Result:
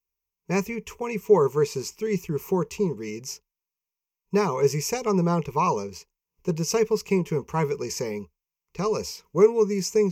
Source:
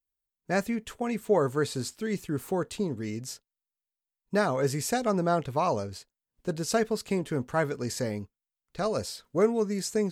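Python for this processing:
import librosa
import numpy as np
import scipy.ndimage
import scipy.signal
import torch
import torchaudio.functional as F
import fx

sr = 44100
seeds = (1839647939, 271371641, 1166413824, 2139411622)

y = fx.ripple_eq(x, sr, per_octave=0.78, db=16)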